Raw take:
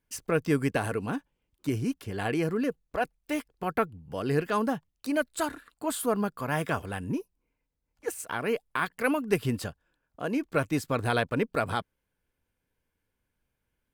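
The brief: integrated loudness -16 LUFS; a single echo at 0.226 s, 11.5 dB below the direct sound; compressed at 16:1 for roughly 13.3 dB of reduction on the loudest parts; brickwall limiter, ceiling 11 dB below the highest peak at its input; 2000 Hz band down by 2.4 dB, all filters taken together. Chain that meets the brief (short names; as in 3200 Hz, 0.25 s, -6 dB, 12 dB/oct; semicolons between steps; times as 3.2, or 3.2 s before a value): bell 2000 Hz -3.5 dB; compressor 16:1, threshold -33 dBFS; limiter -30.5 dBFS; echo 0.226 s -11.5 dB; gain +25.5 dB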